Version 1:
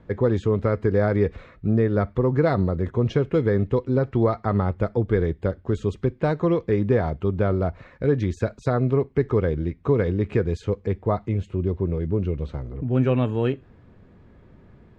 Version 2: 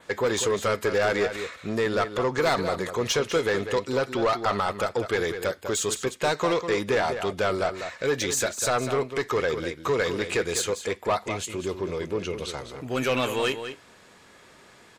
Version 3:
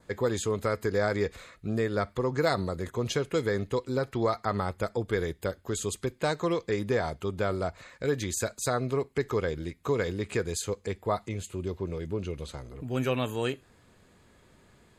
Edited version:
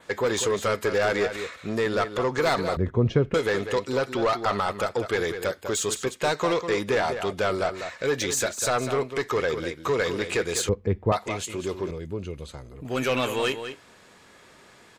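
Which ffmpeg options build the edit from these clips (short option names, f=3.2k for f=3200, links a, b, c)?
-filter_complex "[0:a]asplit=2[a][b];[1:a]asplit=4[c][d][e][f];[c]atrim=end=2.772[g];[a]atrim=start=2.768:end=3.342[h];[d]atrim=start=3.338:end=10.692[i];[b]atrim=start=10.688:end=11.122[j];[e]atrim=start=11.118:end=11.912[k];[2:a]atrim=start=11.908:end=12.852[l];[f]atrim=start=12.848[m];[g][h]acrossfade=d=0.004:c1=hsin:c2=hsin[n];[n][i]acrossfade=d=0.004:c1=hsin:c2=hsin[o];[o][j]acrossfade=d=0.004:c1=hsin:c2=hsin[p];[p][k]acrossfade=d=0.004:c1=hsin:c2=hsin[q];[q][l]acrossfade=d=0.004:c1=hsin:c2=hsin[r];[r][m]acrossfade=d=0.004:c1=hsin:c2=hsin"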